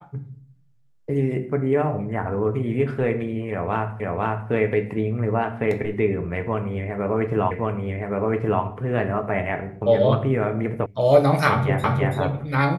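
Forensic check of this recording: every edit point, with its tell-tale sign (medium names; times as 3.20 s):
4.00 s: repeat of the last 0.5 s
7.51 s: repeat of the last 1.12 s
10.86 s: sound stops dead
11.84 s: repeat of the last 0.33 s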